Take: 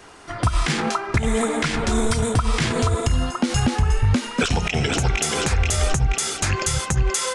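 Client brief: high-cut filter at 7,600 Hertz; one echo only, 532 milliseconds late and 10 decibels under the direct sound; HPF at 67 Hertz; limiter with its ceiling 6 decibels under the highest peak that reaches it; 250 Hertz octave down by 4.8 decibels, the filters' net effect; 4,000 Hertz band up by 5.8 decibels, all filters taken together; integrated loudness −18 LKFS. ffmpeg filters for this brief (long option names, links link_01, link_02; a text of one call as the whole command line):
ffmpeg -i in.wav -af "highpass=67,lowpass=7600,equalizer=frequency=250:width_type=o:gain=-6,equalizer=frequency=4000:width_type=o:gain=8,alimiter=limit=-12dB:level=0:latency=1,aecho=1:1:532:0.316,volume=4.5dB" out.wav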